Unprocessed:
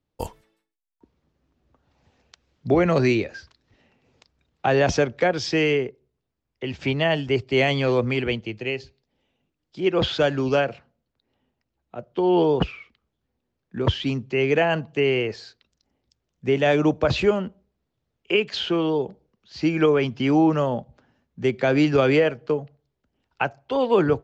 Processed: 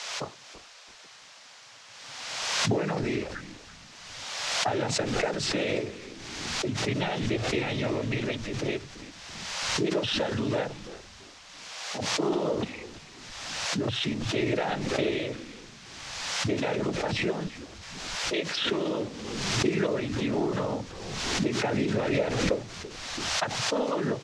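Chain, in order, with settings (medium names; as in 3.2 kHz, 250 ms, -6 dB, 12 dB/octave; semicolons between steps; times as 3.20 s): level-controlled noise filter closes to 330 Hz, open at -17.5 dBFS; compression 4:1, threshold -27 dBFS, peak gain reduction 11.5 dB; noise-vocoded speech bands 12; frequency-shifting echo 334 ms, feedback 31%, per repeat -100 Hz, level -15 dB; band noise 530–6300 Hz -51 dBFS; swell ahead of each attack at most 33 dB/s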